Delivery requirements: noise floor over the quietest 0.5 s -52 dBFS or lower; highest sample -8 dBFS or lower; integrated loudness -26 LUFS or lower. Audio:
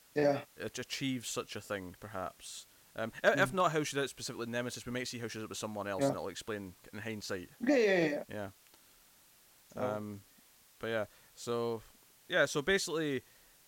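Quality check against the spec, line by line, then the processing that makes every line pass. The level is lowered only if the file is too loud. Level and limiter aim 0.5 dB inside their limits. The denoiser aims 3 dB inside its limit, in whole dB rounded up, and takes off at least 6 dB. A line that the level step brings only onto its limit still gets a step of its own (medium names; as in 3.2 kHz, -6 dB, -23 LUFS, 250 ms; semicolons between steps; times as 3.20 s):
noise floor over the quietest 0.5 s -64 dBFS: pass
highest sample -15.5 dBFS: pass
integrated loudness -35.5 LUFS: pass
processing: none needed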